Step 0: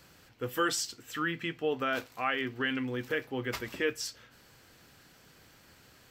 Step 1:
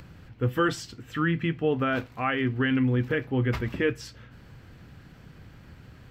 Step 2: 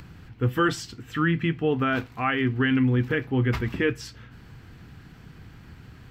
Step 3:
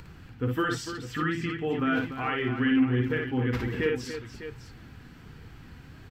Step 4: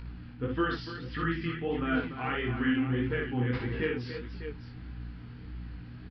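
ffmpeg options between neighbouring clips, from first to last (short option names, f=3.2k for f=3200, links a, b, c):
-af "bass=f=250:g=14,treble=f=4k:g=-13,acompressor=mode=upward:threshold=-49dB:ratio=2.5,volume=3.5dB"
-af "equalizer=f=560:t=o:w=0.29:g=-9,volume=2.5dB"
-filter_complex "[0:a]asplit=2[a][b];[b]acompressor=threshold=-30dB:ratio=6,volume=0dB[c];[a][c]amix=inputs=2:normalize=0,flanger=delay=2.1:depth=2:regen=57:speed=1.3:shape=sinusoidal,aecho=1:1:57|291|603:0.668|0.316|0.251,volume=-4dB"
-af "aeval=exprs='val(0)+0.0126*(sin(2*PI*60*n/s)+sin(2*PI*2*60*n/s)/2+sin(2*PI*3*60*n/s)/3+sin(2*PI*4*60*n/s)/4+sin(2*PI*5*60*n/s)/5)':c=same,flanger=delay=17.5:depth=7.8:speed=1.6,aresample=11025,aresample=44100"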